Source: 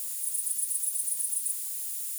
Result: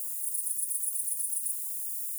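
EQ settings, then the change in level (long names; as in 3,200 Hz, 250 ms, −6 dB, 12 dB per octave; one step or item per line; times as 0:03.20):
high-shelf EQ 6,900 Hz +10 dB
phaser with its sweep stopped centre 850 Hz, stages 6
−8.5 dB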